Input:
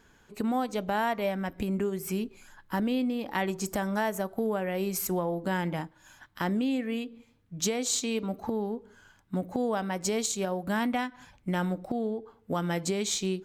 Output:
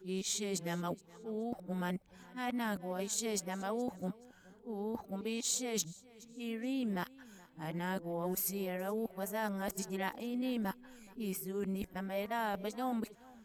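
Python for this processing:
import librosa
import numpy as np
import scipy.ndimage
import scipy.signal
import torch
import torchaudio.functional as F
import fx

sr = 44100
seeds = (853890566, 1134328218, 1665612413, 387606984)

p1 = x[::-1].copy()
p2 = fx.high_shelf(p1, sr, hz=8600.0, db=7.5)
p3 = p2 + fx.echo_feedback(p2, sr, ms=423, feedback_pct=31, wet_db=-22, dry=0)
y = p3 * 10.0 ** (-8.0 / 20.0)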